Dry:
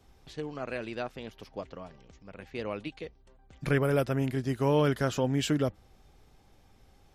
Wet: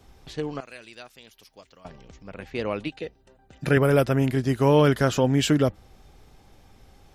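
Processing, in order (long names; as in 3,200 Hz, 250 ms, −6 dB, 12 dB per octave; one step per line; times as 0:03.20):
0:00.60–0:01.85: first-order pre-emphasis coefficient 0.9
0:02.90–0:03.77: notch comb filter 1,100 Hz
level +7 dB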